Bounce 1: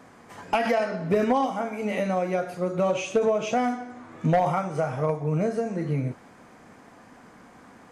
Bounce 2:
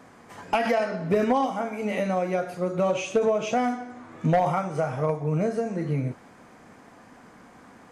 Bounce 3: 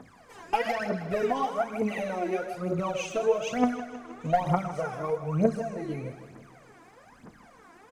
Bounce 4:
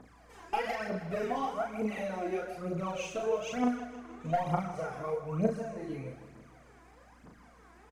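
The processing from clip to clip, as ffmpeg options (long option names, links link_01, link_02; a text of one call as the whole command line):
ffmpeg -i in.wav -af anull out.wav
ffmpeg -i in.wav -filter_complex "[0:a]aphaser=in_gain=1:out_gain=1:delay=3.1:decay=0.8:speed=1.1:type=triangular,asplit=2[link_01][link_02];[link_02]aecho=0:1:158|316|474|632|790|948:0.224|0.128|0.0727|0.0415|0.0236|0.0135[link_03];[link_01][link_03]amix=inputs=2:normalize=0,volume=-7dB" out.wav
ffmpeg -i in.wav -filter_complex "[0:a]aeval=exprs='val(0)+0.00158*(sin(2*PI*60*n/s)+sin(2*PI*2*60*n/s)/2+sin(2*PI*3*60*n/s)/3+sin(2*PI*4*60*n/s)/4+sin(2*PI*5*60*n/s)/5)':channel_layout=same,asplit=2[link_01][link_02];[link_02]adelay=37,volume=-3.5dB[link_03];[link_01][link_03]amix=inputs=2:normalize=0,volume=-6.5dB" out.wav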